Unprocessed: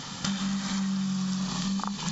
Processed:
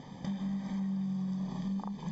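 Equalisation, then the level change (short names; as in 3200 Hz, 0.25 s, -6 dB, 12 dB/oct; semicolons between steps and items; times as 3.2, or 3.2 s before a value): running mean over 32 samples; low shelf 330 Hz -6 dB; 0.0 dB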